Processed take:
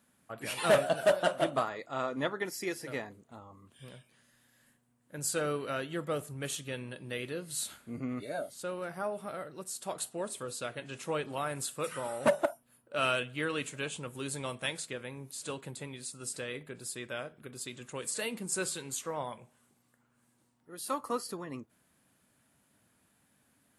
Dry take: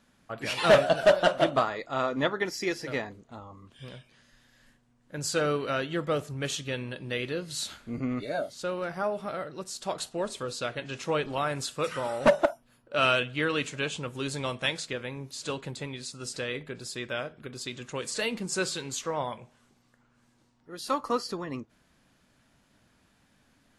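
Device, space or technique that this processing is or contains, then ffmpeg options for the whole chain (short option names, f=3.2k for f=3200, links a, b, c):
budget condenser microphone: -af "highpass=80,highshelf=f=7.4k:t=q:w=1.5:g=9.5,volume=-5.5dB"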